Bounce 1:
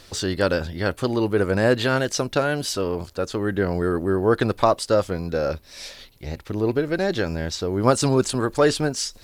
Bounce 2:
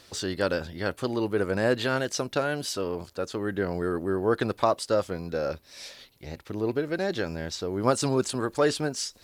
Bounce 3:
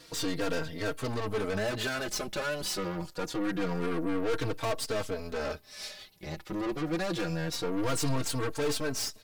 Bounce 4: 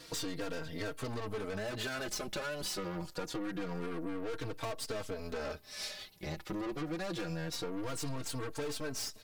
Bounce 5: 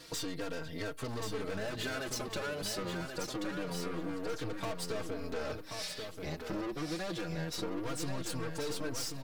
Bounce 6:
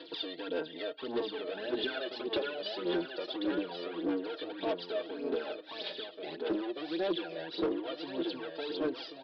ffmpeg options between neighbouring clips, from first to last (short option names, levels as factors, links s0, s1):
-af "highpass=f=120:p=1,volume=0.562"
-filter_complex "[0:a]aecho=1:1:6.4:0.56,aeval=exprs='(tanh(44.7*val(0)+0.75)-tanh(0.75))/44.7':c=same,asplit=2[s0][s1];[s1]adelay=3.8,afreqshift=-0.26[s2];[s0][s2]amix=inputs=2:normalize=1,volume=2.24"
-af "acompressor=threshold=0.0158:ratio=6,volume=1.12"
-af "aecho=1:1:1083|2166|3249:0.501|0.11|0.0243"
-af "highpass=f=270:w=0.5412,highpass=f=270:w=1.3066,equalizer=f=370:t=q:w=4:g=8,equalizer=f=1200:t=q:w=4:g=-9,equalizer=f=2100:t=q:w=4:g=-7,equalizer=f=3400:t=q:w=4:g=8,lowpass=f=3900:w=0.5412,lowpass=f=3900:w=1.3066,aphaser=in_gain=1:out_gain=1:delay=1.7:decay=0.61:speed=1.7:type=sinusoidal,aresample=11025,asoftclip=type=hard:threshold=0.0531,aresample=44100"